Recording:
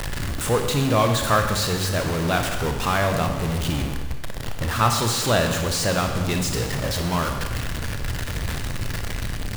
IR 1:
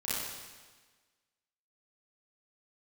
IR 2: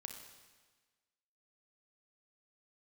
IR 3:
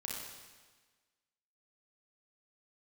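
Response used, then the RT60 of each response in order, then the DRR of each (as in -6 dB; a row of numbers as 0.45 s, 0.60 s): 2; 1.4 s, 1.4 s, 1.4 s; -10.5 dB, 4.0 dB, -3.0 dB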